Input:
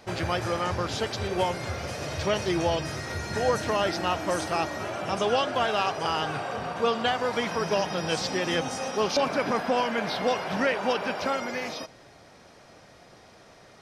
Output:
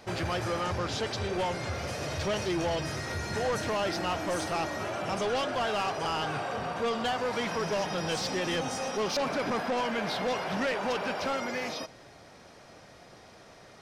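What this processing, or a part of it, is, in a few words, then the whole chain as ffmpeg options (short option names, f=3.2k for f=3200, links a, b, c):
saturation between pre-emphasis and de-emphasis: -filter_complex "[0:a]highshelf=f=11k:g=7.5,asoftclip=type=tanh:threshold=-25dB,highshelf=f=11k:g=-7.5,asettb=1/sr,asplit=3[a][b][c];[a]atrim=end=0.794[d];[b]atrim=start=0.79:end=1.75,asetpts=PTS-STARTPTS,afade=t=in:d=0.004:c=qsin,afade=t=out:st=0.956:d=0.004:c=qsin,lowpass=10k[e];[c]atrim=start=1.746[f];[d][e]acrossfade=d=0.004:c1=hsin:c2=qsin[g];[g][f]acrossfade=d=0.004:c1=qsin:c2=hsin"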